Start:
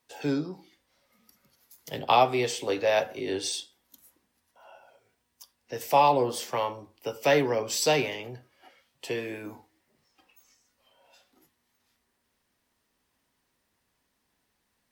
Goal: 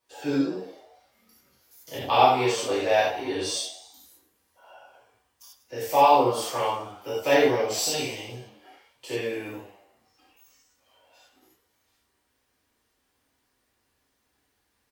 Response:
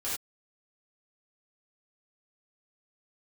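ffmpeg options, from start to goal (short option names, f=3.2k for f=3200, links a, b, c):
-filter_complex "[0:a]asettb=1/sr,asplit=3[a][b][c];[a]atrim=end=7.784[d];[b]atrim=start=7.78:end=9.1,asetpts=PTS-STARTPTS,afade=t=in:d=0.004:c=qsin,afade=t=out:st=1.316:d=0.004:c=qsin,acrossover=split=270|3000[e][f][g];[f]acompressor=threshold=-48dB:ratio=2[h];[e][h][g]amix=inputs=3:normalize=0[i];[c]atrim=start=9.096[j];[d][i]acrossfade=d=0.004:c1=hsin:c2=qsin[k];[k][j]acrossfade=d=0.004:c1=qsin:c2=hsin,asplit=6[l][m][n][o][p][q];[m]adelay=108,afreqshift=90,volume=-14dB[r];[n]adelay=216,afreqshift=180,volume=-19.7dB[s];[o]adelay=324,afreqshift=270,volume=-25.4dB[t];[p]adelay=432,afreqshift=360,volume=-31dB[u];[q]adelay=540,afreqshift=450,volume=-36.7dB[v];[l][r][s][t][u][v]amix=inputs=6:normalize=0[w];[1:a]atrim=start_sample=2205[x];[w][x]afir=irnorm=-1:irlink=0,volume=-2dB"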